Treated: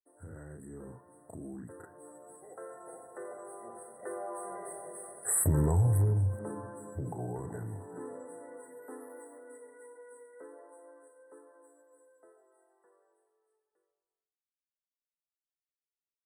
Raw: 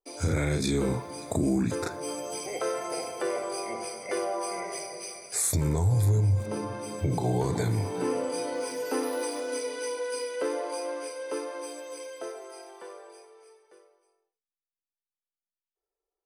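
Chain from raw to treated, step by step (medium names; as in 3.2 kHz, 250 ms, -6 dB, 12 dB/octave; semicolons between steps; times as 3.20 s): Doppler pass-by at 5.50 s, 5 m/s, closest 2.5 m; brick-wall FIR band-stop 2–7.7 kHz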